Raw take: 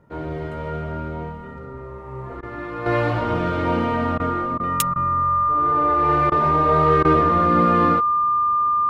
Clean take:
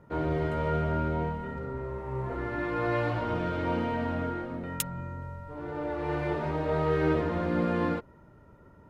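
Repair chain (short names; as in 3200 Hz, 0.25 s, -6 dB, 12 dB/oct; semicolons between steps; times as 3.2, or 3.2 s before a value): notch 1200 Hz, Q 30; interpolate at 2.41/4.18/4.58/4.94/6.3/7.03, 17 ms; gain correction -8 dB, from 2.86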